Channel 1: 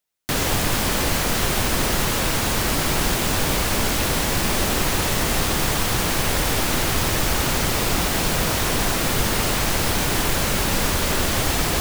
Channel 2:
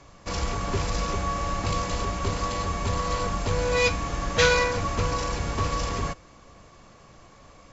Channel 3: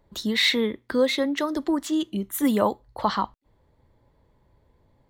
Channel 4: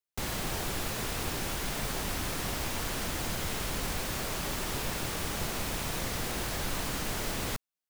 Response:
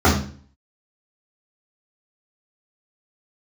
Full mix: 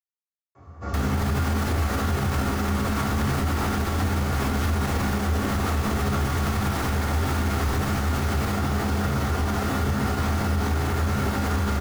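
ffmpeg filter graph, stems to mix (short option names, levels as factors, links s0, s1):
-filter_complex "[0:a]adelay=650,volume=0.237,asplit=2[s0][s1];[s1]volume=0.158[s2];[1:a]equalizer=f=4800:w=0.4:g=-7.5,acompressor=threshold=0.0355:ratio=6,adelay=550,volume=0.15,asplit=2[s3][s4];[s4]volume=0.355[s5];[3:a]adelay=1000,volume=0.944[s6];[4:a]atrim=start_sample=2205[s7];[s2][s5]amix=inputs=2:normalize=0[s8];[s8][s7]afir=irnorm=-1:irlink=0[s9];[s0][s3][s6][s9]amix=inputs=4:normalize=0,equalizer=f=1500:t=o:w=1.5:g=6,alimiter=limit=0.158:level=0:latency=1:release=62"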